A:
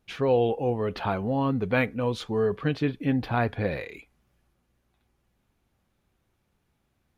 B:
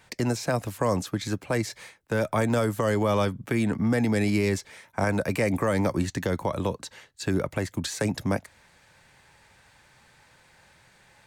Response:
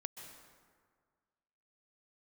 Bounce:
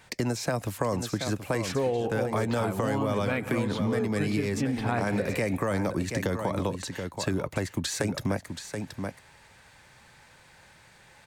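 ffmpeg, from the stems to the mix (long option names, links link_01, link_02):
-filter_complex "[0:a]adelay=1550,volume=-1.5dB,asplit=2[link_01][link_02];[link_02]volume=-3dB[link_03];[1:a]volume=2dB,asplit=2[link_04][link_05];[link_05]volume=-10dB[link_06];[2:a]atrim=start_sample=2205[link_07];[link_03][link_07]afir=irnorm=-1:irlink=0[link_08];[link_06]aecho=0:1:727:1[link_09];[link_01][link_04][link_08][link_09]amix=inputs=4:normalize=0,acompressor=threshold=-24dB:ratio=6"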